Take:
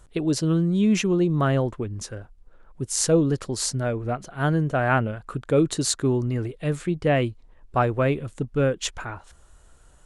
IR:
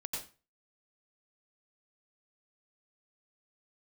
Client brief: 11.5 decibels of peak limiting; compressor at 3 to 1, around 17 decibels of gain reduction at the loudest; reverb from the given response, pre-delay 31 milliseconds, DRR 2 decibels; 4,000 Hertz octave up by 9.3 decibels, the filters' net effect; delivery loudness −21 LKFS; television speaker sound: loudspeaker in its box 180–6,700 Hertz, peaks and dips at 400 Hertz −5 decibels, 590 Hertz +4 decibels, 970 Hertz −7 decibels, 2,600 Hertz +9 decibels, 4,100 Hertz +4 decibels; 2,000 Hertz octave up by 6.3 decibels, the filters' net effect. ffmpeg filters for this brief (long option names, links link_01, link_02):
-filter_complex "[0:a]equalizer=frequency=2000:width_type=o:gain=3.5,equalizer=frequency=4000:width_type=o:gain=6.5,acompressor=threshold=-39dB:ratio=3,alimiter=level_in=5.5dB:limit=-24dB:level=0:latency=1,volume=-5.5dB,asplit=2[link_01][link_02];[1:a]atrim=start_sample=2205,adelay=31[link_03];[link_02][link_03]afir=irnorm=-1:irlink=0,volume=-2.5dB[link_04];[link_01][link_04]amix=inputs=2:normalize=0,highpass=frequency=180:width=0.5412,highpass=frequency=180:width=1.3066,equalizer=frequency=400:width_type=q:width=4:gain=-5,equalizer=frequency=590:width_type=q:width=4:gain=4,equalizer=frequency=970:width_type=q:width=4:gain=-7,equalizer=frequency=2600:width_type=q:width=4:gain=9,equalizer=frequency=4100:width_type=q:width=4:gain=4,lowpass=frequency=6700:width=0.5412,lowpass=frequency=6700:width=1.3066,volume=17dB"